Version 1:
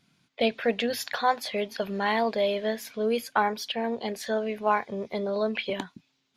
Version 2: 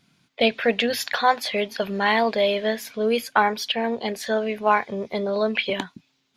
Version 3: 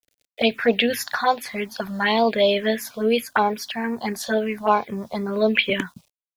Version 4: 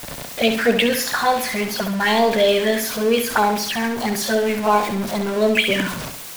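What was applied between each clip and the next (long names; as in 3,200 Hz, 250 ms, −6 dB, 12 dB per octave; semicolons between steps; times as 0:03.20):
dynamic equaliser 2,500 Hz, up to +4 dB, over −39 dBFS, Q 0.71; level +4 dB
automatic gain control gain up to 7 dB; bit reduction 9 bits; phaser swept by the level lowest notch 180 Hz, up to 1,900 Hz, full sweep at −11.5 dBFS
converter with a step at zero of −23.5 dBFS; on a send: flutter between parallel walls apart 11.5 metres, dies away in 0.52 s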